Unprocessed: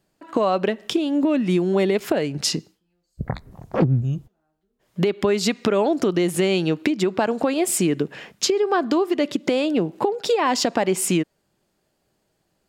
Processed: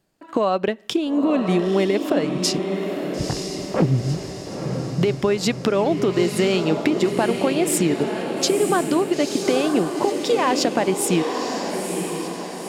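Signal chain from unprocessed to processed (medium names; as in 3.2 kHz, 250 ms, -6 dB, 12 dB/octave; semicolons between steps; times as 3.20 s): transient shaper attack 0 dB, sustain -5 dB; echo that smears into a reverb 947 ms, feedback 53%, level -5.5 dB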